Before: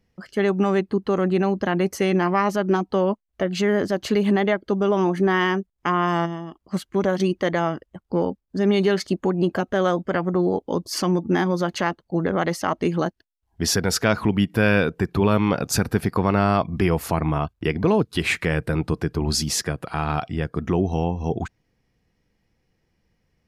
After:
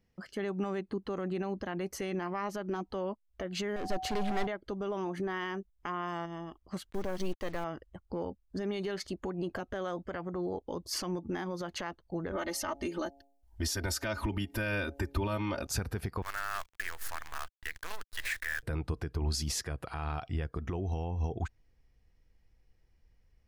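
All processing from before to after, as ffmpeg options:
ffmpeg -i in.wav -filter_complex "[0:a]asettb=1/sr,asplit=3[link_01][link_02][link_03];[link_01]atrim=end=3.764[link_04];[link_02]atrim=start=3.76:end=4.47,asetpts=PTS-STARTPTS,afade=type=in:duration=0.004:curve=qsin,afade=type=out:start_time=0.706:duration=0.004:curve=qsin,asoftclip=type=hard:threshold=-23.5dB,aeval=exprs='val(0)+0.0282*sin(2*PI*750*n/s)':channel_layout=same[link_05];[link_03]atrim=start=4.466[link_06];[link_04][link_05]acrossfade=duration=0.004:curve1=hsin:curve2=qsin[link_07];[link_07][link_06]acrossfade=duration=0.004:curve1=qsin:curve2=hsin,asettb=1/sr,asplit=3[link_08][link_09][link_10];[link_08]atrim=end=6.904[link_11];[link_09]atrim=start=6.9:end=7.64,asetpts=PTS-STARTPTS,afade=type=in:duration=0.004:curve=qsin,afade=type=out:start_time=0.736:duration=0.004:curve=qsin,aeval=exprs='(tanh(5.62*val(0)+0.45)-tanh(0.45))/5.62':channel_layout=same,acrusher=bits=6:mix=0:aa=0.5[link_12];[link_10]atrim=start=7.636[link_13];[link_11][link_12]acrossfade=duration=0.004:curve1=hsin:curve2=qsin[link_14];[link_14][link_13]acrossfade=duration=0.004:curve1=qsin:curve2=hsin,asettb=1/sr,asplit=3[link_15][link_16][link_17];[link_15]atrim=end=12.314[link_18];[link_16]atrim=start=12.31:end=15.67,asetpts=PTS-STARTPTS,afade=type=in:duration=0.004:curve=qsin,afade=type=out:start_time=3.356:duration=0.004:curve=qsin,highshelf=frequency=5000:gain=7,aecho=1:1:3.3:0.9,atrim=end_sample=148176,bandreject=frequency=139.4:width_type=h:width=4,bandreject=frequency=278.8:width_type=h:width=4,bandreject=frequency=418.2:width_type=h:width=4,bandreject=frequency=557.6:width_type=h:width=4,bandreject=frequency=697:width_type=h:width=4,bandreject=frequency=836.4:width_type=h:width=4[link_19];[link_17]atrim=start=15.666[link_20];[link_18][link_19]acrossfade=duration=0.004:curve1=hsin:curve2=qsin[link_21];[link_21][link_20]acrossfade=duration=0.004:curve1=qsin:curve2=hsin,asettb=1/sr,asplit=3[link_22][link_23][link_24];[link_22]atrim=end=16.224[link_25];[link_23]atrim=start=16.22:end=18.63,asetpts=PTS-STARTPTS,afade=type=in:duration=0.004:curve=qsin,afade=type=out:start_time=2.406:duration=0.004:curve=qsin,highpass=frequency=1700:width_type=q:width=6.3,equalizer=frequency=2400:width=0.85:gain=-11.5,acrusher=bits=6:dc=4:mix=0:aa=0.000001[link_26];[link_24]atrim=start=18.626[link_27];[link_25][link_26]acrossfade=duration=0.004:curve1=hsin:curve2=qsin[link_28];[link_28][link_27]acrossfade=duration=0.004:curve1=qsin:curve2=hsin,alimiter=limit=-18.5dB:level=0:latency=1:release=165,asubboost=boost=7:cutoff=62,volume=-6dB" out.wav

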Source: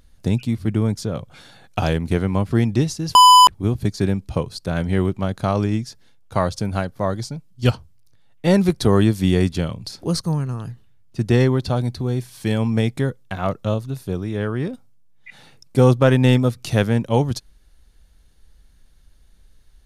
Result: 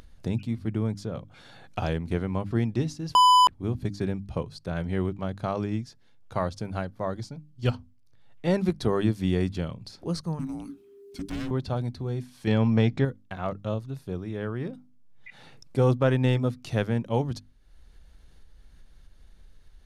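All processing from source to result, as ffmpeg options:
ffmpeg -i in.wav -filter_complex "[0:a]asettb=1/sr,asplit=3[link_01][link_02][link_03];[link_01]atrim=end=10.394[link_04];[link_02]atrim=start=10.39:end=11.51,asetpts=PTS-STARTPTS,afade=type=in:duration=0.004:curve=qsin,afade=type=out:start_time=1.116:duration=0.004:curve=qsin,aemphasis=mode=production:type=50fm,volume=22dB,asoftclip=hard,volume=-22dB,afreqshift=-400[link_05];[link_03]atrim=start=11.506[link_06];[link_04][link_05]acrossfade=duration=0.004:curve1=hsin:curve2=qsin[link_07];[link_07][link_06]acrossfade=duration=0.004:curve1=qsin:curve2=hsin,asettb=1/sr,asplit=3[link_08][link_09][link_10];[link_08]atrim=end=12.474[link_11];[link_09]atrim=start=12.47:end=13.05,asetpts=PTS-STARTPTS,afade=type=in:duration=0.004:curve=qsin,afade=type=out:start_time=0.576:duration=0.004:curve=qsin,lowpass=frequency=6400:width=0.5412,lowpass=frequency=6400:width=1.3066,acontrast=60[link_12];[link_10]atrim=start=13.046[link_13];[link_11][link_12]acrossfade=duration=0.004:curve1=hsin:curve2=qsin[link_14];[link_14][link_13]acrossfade=duration=0.004:curve1=qsin:curve2=hsin,lowpass=frequency=3800:poles=1,bandreject=frequency=50:width_type=h:width=6,bandreject=frequency=100:width_type=h:width=6,bandreject=frequency=150:width_type=h:width=6,bandreject=frequency=200:width_type=h:width=6,bandreject=frequency=250:width_type=h:width=6,bandreject=frequency=300:width_type=h:width=6,acompressor=mode=upward:threshold=-32dB:ratio=2.5,volume=-7.5dB" out.wav

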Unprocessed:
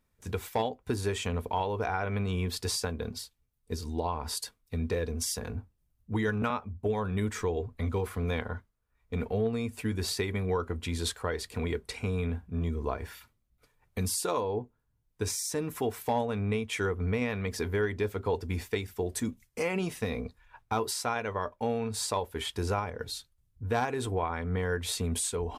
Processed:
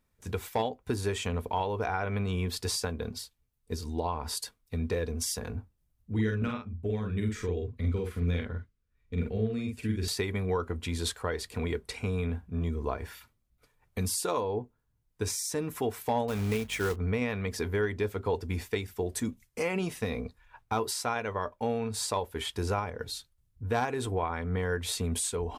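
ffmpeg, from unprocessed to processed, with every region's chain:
ffmpeg -i in.wav -filter_complex "[0:a]asettb=1/sr,asplit=3[link_01][link_02][link_03];[link_01]atrim=end=6.124[link_04];[link_02]atrim=start=6.12:end=10.08,asetpts=PTS-STARTPTS,afade=type=in:duration=0.004:curve=qsin,afade=type=out:start_time=3.956:duration=0.004:curve=qsin,lowpass=frequency=3500:poles=1,equalizer=frequency=870:width=1.1:gain=-14.5,asplit=2[link_05][link_06];[link_06]adelay=46,volume=-3dB[link_07];[link_05][link_07]amix=inputs=2:normalize=0,atrim=end_sample=174636[link_08];[link_03]atrim=start=10.076[link_09];[link_04][link_08]acrossfade=duration=0.004:curve1=hsin:curve2=qsin[link_10];[link_10][link_09]acrossfade=duration=0.004:curve1=qsin:curve2=hsin,asettb=1/sr,asplit=3[link_11][link_12][link_13];[link_11]atrim=end=16.284[link_14];[link_12]atrim=start=16.28:end=16.96,asetpts=PTS-STARTPTS,afade=type=in:duration=0.004:curve=qsin,afade=type=out:start_time=0.676:duration=0.004:curve=qsin,aeval=exprs='val(0)+0.00282*(sin(2*PI*50*n/s)+sin(2*PI*2*50*n/s)/2+sin(2*PI*3*50*n/s)/3+sin(2*PI*4*50*n/s)/4+sin(2*PI*5*50*n/s)/5)':channel_layout=same,acrusher=bits=3:mode=log:mix=0:aa=0.000001[link_15];[link_13]atrim=start=16.956[link_16];[link_14][link_15]acrossfade=duration=0.004:curve1=hsin:curve2=qsin[link_17];[link_17][link_16]acrossfade=duration=0.004:curve1=qsin:curve2=hsin" out.wav

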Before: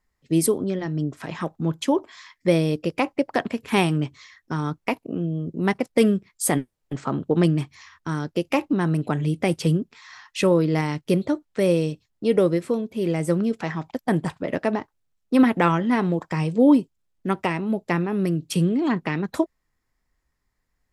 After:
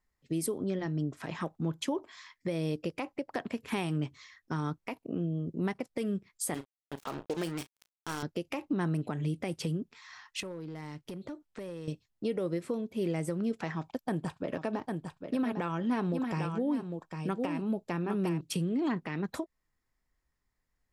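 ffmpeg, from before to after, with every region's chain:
ffmpeg -i in.wav -filter_complex "[0:a]asettb=1/sr,asplit=3[link_01][link_02][link_03];[link_01]atrim=end=6.544[link_04];[link_02]atrim=start=6.54:end=8.23,asetpts=PTS-STARTPTS,afade=type=in:duration=0.004:curve=qsin,afade=type=out:start_time=1.686:duration=0.004:curve=qsin,bass=frequency=250:gain=-13,treble=frequency=4000:gain=8,acrusher=bits=4:mix=0:aa=0.5,asplit=2[link_05][link_06];[link_06]adelay=36,volume=-14dB[link_07];[link_05][link_07]amix=inputs=2:normalize=0,atrim=end_sample=74529[link_08];[link_03]atrim=start=8.226[link_09];[link_04][link_08]acrossfade=duration=0.004:curve1=hsin:curve2=qsin[link_10];[link_10][link_09]acrossfade=duration=0.004:curve1=qsin:curve2=hsin,asettb=1/sr,asplit=3[link_11][link_12][link_13];[link_11]atrim=end=10.404[link_14];[link_12]atrim=start=10.4:end=11.88,asetpts=PTS-STARTPTS,afade=type=in:duration=0.004:curve=qsin,afade=type=out:start_time=1.476:duration=0.004:curve=qsin,acompressor=threshold=-31dB:ratio=8:attack=3.2:release=140:knee=1:detection=peak,asoftclip=type=hard:threshold=-29dB[link_15];[link_13]atrim=start=11.876[link_16];[link_14][link_15]acrossfade=duration=0.004:curve1=hsin:curve2=qsin[link_17];[link_17][link_16]acrossfade=duration=0.004:curve1=qsin:curve2=hsin,asettb=1/sr,asplit=3[link_18][link_19][link_20];[link_18]atrim=end=13.724[link_21];[link_19]atrim=start=13.72:end=18.41,asetpts=PTS-STARTPTS,afade=type=in:duration=0.004:curve=qsin,afade=type=out:start_time=4.686:duration=0.004:curve=qsin,bandreject=frequency=2000:width=7.7,aecho=1:1:802:0.376,atrim=end_sample=206829[link_22];[link_20]atrim=start=18.406[link_23];[link_21][link_22]acrossfade=duration=0.004:curve1=hsin:curve2=qsin[link_24];[link_24][link_23]acrossfade=duration=0.004:curve1=qsin:curve2=hsin,acompressor=threshold=-20dB:ratio=4,alimiter=limit=-16.5dB:level=0:latency=1:release=179,volume=-6dB" out.wav

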